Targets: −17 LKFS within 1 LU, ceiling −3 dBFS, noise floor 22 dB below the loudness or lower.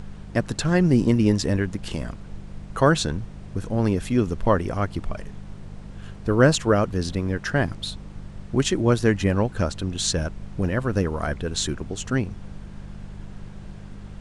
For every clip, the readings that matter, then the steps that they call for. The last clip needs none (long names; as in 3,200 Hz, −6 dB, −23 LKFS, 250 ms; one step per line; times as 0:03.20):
mains hum 50 Hz; hum harmonics up to 200 Hz; level of the hum −41 dBFS; background noise floor −40 dBFS; target noise floor −46 dBFS; integrated loudness −23.5 LKFS; sample peak −5.0 dBFS; target loudness −17.0 LKFS
→ hum removal 50 Hz, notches 4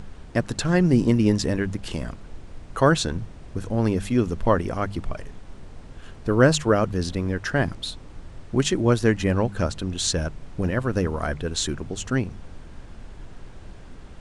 mains hum none found; background noise floor −43 dBFS; target noise floor −46 dBFS
→ noise reduction from a noise print 6 dB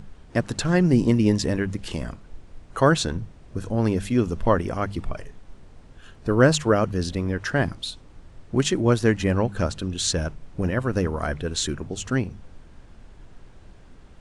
background noise floor −48 dBFS; integrated loudness −24.0 LKFS; sample peak −5.5 dBFS; target loudness −17.0 LKFS
→ level +7 dB
brickwall limiter −3 dBFS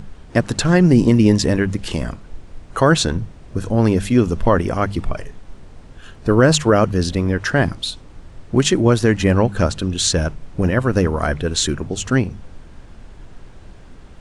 integrated loudness −17.5 LKFS; sample peak −3.0 dBFS; background noise floor −41 dBFS